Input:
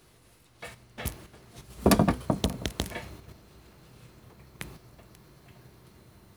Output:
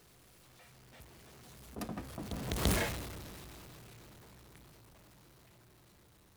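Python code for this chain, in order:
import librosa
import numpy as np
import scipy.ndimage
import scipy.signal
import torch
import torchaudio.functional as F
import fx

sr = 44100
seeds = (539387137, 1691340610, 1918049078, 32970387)

y = x + 0.5 * 10.0 ** (-25.5 / 20.0) * np.sign(x)
y = fx.doppler_pass(y, sr, speed_mps=18, closest_m=1.4, pass_at_s=2.71)
y = fx.attack_slew(y, sr, db_per_s=280.0)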